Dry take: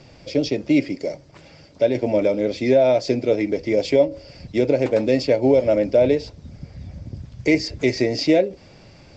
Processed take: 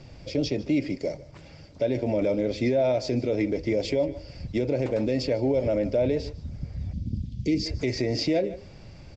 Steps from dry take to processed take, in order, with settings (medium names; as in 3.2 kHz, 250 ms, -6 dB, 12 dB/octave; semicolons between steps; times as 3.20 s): bass shelf 120 Hz +12 dB; delay 151 ms -20 dB; peak limiter -12 dBFS, peak gain reduction 8 dB; 6.93–7.66 s: FFT filter 150 Hz 0 dB, 210 Hz +10 dB, 1.2 kHz -25 dB, 3.3 kHz +3 dB, 7.9 kHz -3 dB; trim -4 dB